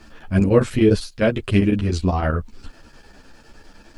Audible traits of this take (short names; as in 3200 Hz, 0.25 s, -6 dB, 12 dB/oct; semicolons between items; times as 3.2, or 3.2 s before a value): chopped level 9.9 Hz, depth 65%, duty 80%; a quantiser's noise floor 12-bit, dither none; a shimmering, thickened sound